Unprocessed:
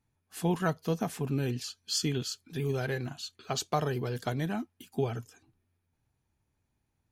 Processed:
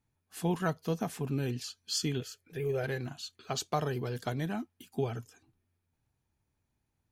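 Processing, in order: 2.20–2.84 s: graphic EQ 250/500/1000/2000/4000/8000 Hz -12/+11/-7/+6/-10/-4 dB; trim -2 dB

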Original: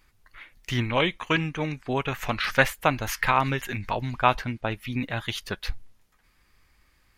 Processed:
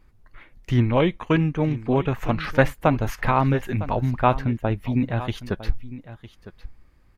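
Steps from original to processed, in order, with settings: tilt shelf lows +8.5 dB, about 1.1 kHz; delay 956 ms -15.5 dB

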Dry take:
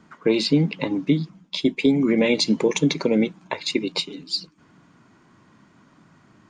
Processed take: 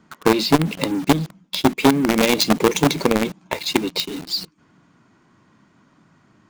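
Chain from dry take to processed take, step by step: dynamic bell 1.4 kHz, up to -7 dB, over -45 dBFS, Q 1.7; in parallel at -3.5 dB: companded quantiser 2-bit; on the sum: transformer saturation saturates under 440 Hz; trim -1.5 dB

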